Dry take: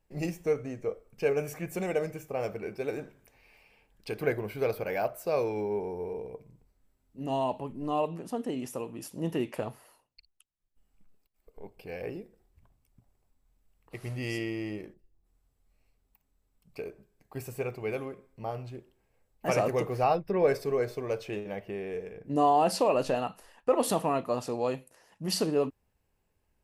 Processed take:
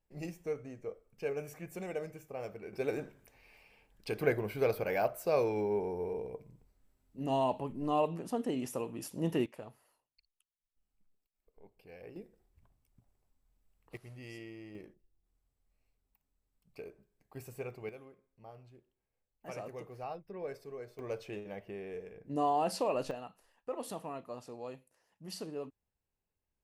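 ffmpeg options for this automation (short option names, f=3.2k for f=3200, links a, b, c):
-af "asetnsamples=n=441:p=0,asendcmd='2.73 volume volume -1dB;9.46 volume volume -13dB;12.16 volume volume -4.5dB;13.97 volume volume -14dB;14.75 volume volume -8dB;17.89 volume volume -16.5dB;20.99 volume volume -7dB;23.11 volume volume -14dB',volume=-9dB"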